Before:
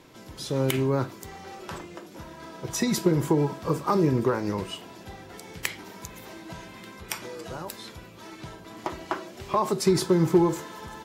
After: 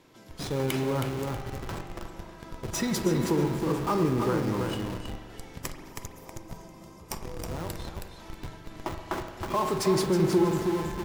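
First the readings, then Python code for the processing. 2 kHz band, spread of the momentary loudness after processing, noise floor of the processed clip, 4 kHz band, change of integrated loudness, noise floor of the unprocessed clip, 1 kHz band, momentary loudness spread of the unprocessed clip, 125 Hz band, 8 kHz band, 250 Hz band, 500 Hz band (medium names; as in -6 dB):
-1.5 dB, 19 LU, -48 dBFS, -2.0 dB, -2.5 dB, -47 dBFS, -1.5 dB, 20 LU, -1.5 dB, -2.0 dB, -1.5 dB, -2.0 dB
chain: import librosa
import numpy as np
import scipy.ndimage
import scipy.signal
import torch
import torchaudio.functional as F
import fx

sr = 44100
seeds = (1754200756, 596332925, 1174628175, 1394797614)

p1 = fx.spec_box(x, sr, start_s=5.6, length_s=1.97, low_hz=1300.0, high_hz=4600.0, gain_db=-10)
p2 = fx.echo_feedback(p1, sr, ms=320, feedback_pct=27, wet_db=-6.0)
p3 = fx.schmitt(p2, sr, flips_db=-31.5)
p4 = p2 + (p3 * librosa.db_to_amplitude(-3.5))
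p5 = fx.rev_spring(p4, sr, rt60_s=1.5, pass_ms=(42,), chirp_ms=30, drr_db=7.5)
y = p5 * librosa.db_to_amplitude(-6.0)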